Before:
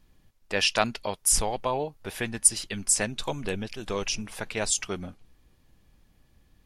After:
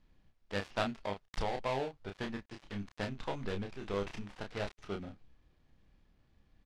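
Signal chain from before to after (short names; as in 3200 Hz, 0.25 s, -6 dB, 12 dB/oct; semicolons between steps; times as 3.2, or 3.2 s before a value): switching dead time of 0.21 ms; LPF 4500 Hz 12 dB/oct; doubler 30 ms -5 dB; gain -7 dB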